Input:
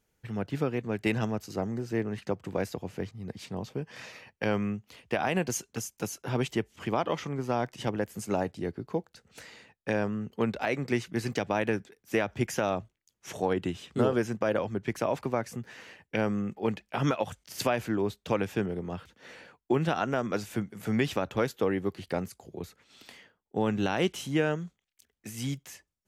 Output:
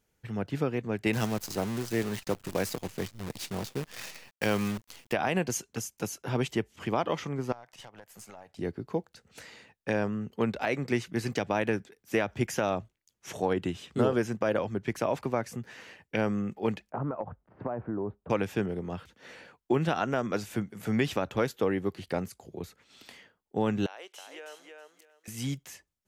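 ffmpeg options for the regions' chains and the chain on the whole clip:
ffmpeg -i in.wav -filter_complex "[0:a]asettb=1/sr,asplit=3[link_01][link_02][link_03];[link_01]atrim=end=1.134[link_04];[link_02]atrim=start=1.13:end=5.13,asetpts=PTS-STARTPTS,afade=type=in:duration=0.004:curve=qsin,afade=type=out:start_time=3.996:duration=0.004:curve=qsin,highshelf=frequency=3400:gain=10.5,acrusher=bits=7:dc=4:mix=0:aa=0.000001[link_05];[link_03]atrim=start=5.126[link_06];[link_04][link_05]acrossfade=duration=0.004:curve1=hsin:curve2=qsin[link_07];[link_07][link_06]acrossfade=duration=0.004:curve1=qsin:curve2=hsin,asettb=1/sr,asplit=3[link_08][link_09][link_10];[link_08]atrim=end=7.524[link_11];[link_09]atrim=start=7.52:end=8.59,asetpts=PTS-STARTPTS,afade=type=in:duration=0.004:curve=qsin,afade=type=out:start_time=1.066:duration=0.004:curve=qsin,lowshelf=frequency=490:width_type=q:width=1.5:gain=-11,acompressor=threshold=-40dB:ratio=12:attack=3.2:release=140:knee=1:detection=peak,aeval=exprs='(tanh(50.1*val(0)+0.65)-tanh(0.65))/50.1':channel_layout=same[link_12];[link_10]atrim=start=8.586[link_13];[link_11][link_12]acrossfade=duration=0.004:curve1=hsin:curve2=qsin[link_14];[link_14][link_13]acrossfade=duration=0.004:curve1=qsin:curve2=hsin,asettb=1/sr,asplit=3[link_15][link_16][link_17];[link_15]atrim=end=16.904[link_18];[link_16]atrim=start=16.9:end=18.3,asetpts=PTS-STARTPTS,afade=type=in:duration=0.004:curve=qsin,afade=type=out:start_time=1.396:duration=0.004:curve=qsin,lowpass=frequency=1200:width=0.5412,lowpass=frequency=1200:width=1.3066,acompressor=threshold=-28dB:ratio=6:attack=3.2:release=140:knee=1:detection=peak[link_19];[link_17]atrim=start=18.296[link_20];[link_18][link_19]acrossfade=duration=0.004:curve1=hsin:curve2=qsin[link_21];[link_21][link_20]acrossfade=duration=0.004:curve1=qsin:curve2=hsin,asettb=1/sr,asplit=3[link_22][link_23][link_24];[link_22]atrim=end=23.864[link_25];[link_23]atrim=start=23.86:end=25.28,asetpts=PTS-STARTPTS,afade=type=in:duration=0.004:curve=qsin,afade=type=out:start_time=1.416:duration=0.004:curve=qsin,highpass=frequency=480:width=0.5412,highpass=frequency=480:width=1.3066,acompressor=threshold=-54dB:ratio=2:attack=3.2:release=140:knee=1:detection=peak,aecho=1:1:321|642|963:0.596|0.125|0.0263,atrim=end_sample=62622[link_26];[link_24]atrim=start=25.276[link_27];[link_25][link_26]acrossfade=duration=0.004:curve1=hsin:curve2=qsin[link_28];[link_28][link_27]acrossfade=duration=0.004:curve1=qsin:curve2=hsin" out.wav

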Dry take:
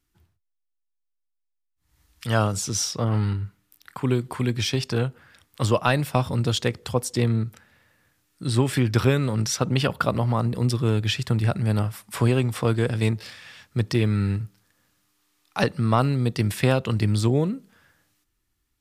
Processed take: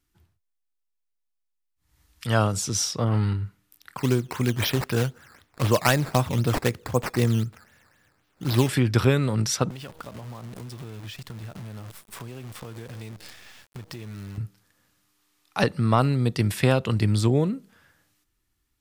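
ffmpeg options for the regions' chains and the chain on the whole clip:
ffmpeg -i in.wav -filter_complex "[0:a]asettb=1/sr,asplit=3[link_01][link_02][link_03];[link_01]atrim=end=3.974[link_04];[link_02]atrim=start=3.97:end=8.69,asetpts=PTS-STARTPTS,afade=type=in:duration=0.004:curve=qsin,afade=type=out:start_time=4.716:duration=0.004:curve=qsin,equalizer=frequency=1600:width_type=o:width=0.34:gain=3,acrusher=samples=10:mix=1:aa=0.000001:lfo=1:lforange=10:lforate=3.9[link_05];[link_03]atrim=start=8.686[link_06];[link_04][link_05]acrossfade=duration=0.004:curve1=hsin:curve2=qsin[link_07];[link_07][link_06]acrossfade=duration=0.004:curve1=qsin:curve2=hsin,asettb=1/sr,asplit=3[link_08][link_09][link_10];[link_08]atrim=end=9.704[link_11];[link_09]atrim=start=9.7:end=14.38,asetpts=PTS-STARTPTS,afade=type=in:duration=0.004:curve=qsin,afade=type=out:start_time=4.676:duration=0.004:curve=qsin,bandreject=frequency=159.6:width_type=h:width=4,bandreject=frequency=319.2:width_type=h:width=4,bandreject=frequency=478.8:width_type=h:width=4,bandreject=frequency=638.4:width_type=h:width=4,acrusher=bits=6:dc=4:mix=0:aa=0.000001,acompressor=threshold=-36dB:ratio=6:attack=3.2:release=140:knee=1:detection=peak[link_12];[link_10]atrim=start=14.376[link_13];[link_11][link_12]acrossfade=duration=0.004:curve1=hsin:curve2=qsin[link_14];[link_14][link_13]acrossfade=duration=0.004:curve1=qsin:curve2=hsin" out.wav

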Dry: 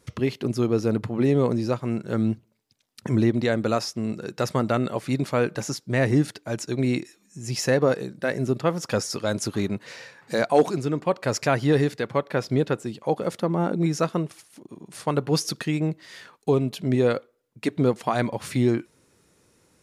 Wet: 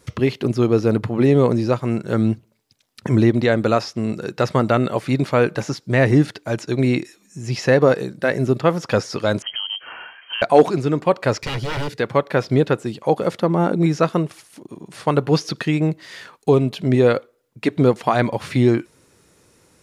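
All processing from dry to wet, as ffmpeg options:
ffmpeg -i in.wav -filter_complex "[0:a]asettb=1/sr,asplit=3[link_01][link_02][link_03];[link_01]atrim=end=9.424[link_04];[link_02]atrim=start=9.42:end=10.42,asetpts=PTS-STARTPTS,afade=type=in:duration=0.004:curve=qsin,afade=type=out:start_time=0.996:duration=0.004:curve=qsin,lowshelf=frequency=140:gain=10.5,acompressor=threshold=-30dB:ratio=5:attack=3.2:release=140:knee=1:detection=peak,lowpass=frequency=2800:width_type=q:width=0.5098,lowpass=frequency=2800:width_type=q:width=0.6013,lowpass=frequency=2800:width_type=q:width=0.9,lowpass=frequency=2800:width_type=q:width=2.563,afreqshift=-3300[link_05];[link_03]atrim=start=10.416[link_06];[link_04][link_05]acrossfade=duration=0.004:curve1=hsin:curve2=qsin[link_07];[link_07][link_06]acrossfade=duration=0.004:curve1=qsin:curve2=hsin,asettb=1/sr,asplit=3[link_08][link_09][link_10];[link_08]atrim=end=11.384[link_11];[link_09]atrim=start=11.38:end=11.98,asetpts=PTS-STARTPTS,afade=type=in:duration=0.004:curve=qsin,afade=type=out:start_time=0.596:duration=0.004:curve=qsin,aeval=exprs='0.0708*(abs(mod(val(0)/0.0708+3,4)-2)-1)':channel_layout=same,equalizer=frequency=970:width=0.45:gain=-6,aecho=1:1:2.1:0.31,atrim=end_sample=26460[link_12];[link_10]atrim=start=11.976[link_13];[link_11][link_12]acrossfade=duration=0.004:curve1=hsin:curve2=qsin[link_14];[link_14][link_13]acrossfade=duration=0.004:curve1=qsin:curve2=hsin,acrossover=split=4600[link_15][link_16];[link_16]acompressor=threshold=-51dB:ratio=4:attack=1:release=60[link_17];[link_15][link_17]amix=inputs=2:normalize=0,equalizer=frequency=220:width_type=o:width=0.77:gain=-2,volume=6.5dB" out.wav

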